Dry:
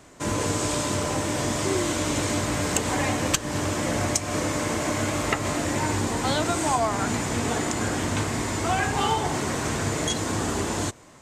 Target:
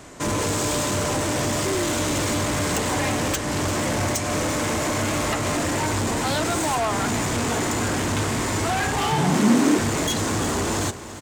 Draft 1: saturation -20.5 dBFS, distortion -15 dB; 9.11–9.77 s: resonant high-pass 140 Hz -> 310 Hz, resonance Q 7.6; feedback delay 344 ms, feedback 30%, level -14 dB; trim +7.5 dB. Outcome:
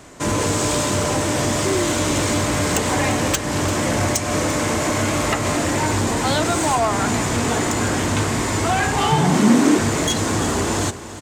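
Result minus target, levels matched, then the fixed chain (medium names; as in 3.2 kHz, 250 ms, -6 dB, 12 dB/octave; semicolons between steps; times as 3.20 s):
saturation: distortion -7 dB
saturation -28 dBFS, distortion -9 dB; 9.11–9.77 s: resonant high-pass 140 Hz -> 310 Hz, resonance Q 7.6; feedback delay 344 ms, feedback 30%, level -14 dB; trim +7.5 dB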